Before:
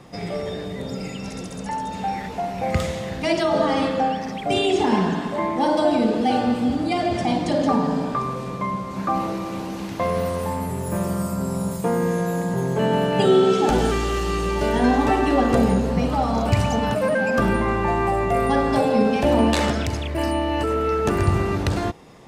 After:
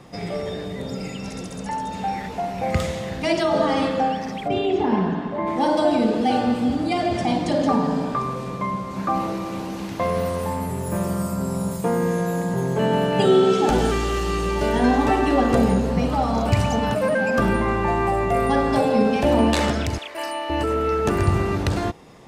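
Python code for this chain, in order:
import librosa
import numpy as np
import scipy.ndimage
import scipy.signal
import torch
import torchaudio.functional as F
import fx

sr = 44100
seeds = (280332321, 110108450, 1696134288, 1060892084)

y = fx.spacing_loss(x, sr, db_at_10k=26, at=(4.47, 5.46), fade=0.02)
y = fx.highpass(y, sr, hz=700.0, slope=12, at=(19.98, 20.5))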